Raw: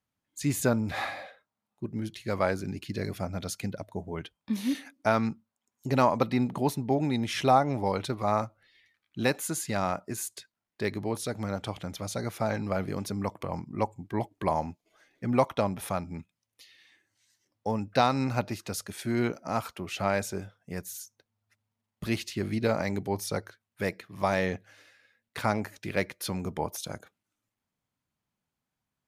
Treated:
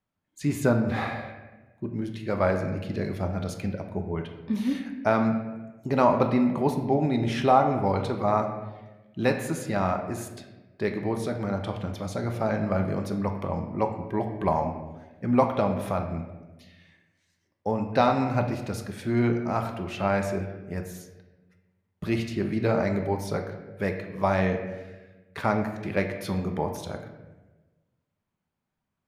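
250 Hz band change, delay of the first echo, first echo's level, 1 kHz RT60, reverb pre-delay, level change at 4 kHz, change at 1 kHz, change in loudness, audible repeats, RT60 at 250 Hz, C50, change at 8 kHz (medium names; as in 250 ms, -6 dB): +4.0 dB, no echo, no echo, 1.0 s, 3 ms, -3.0 dB, +3.0 dB, +3.5 dB, no echo, 1.5 s, 7.0 dB, -7.0 dB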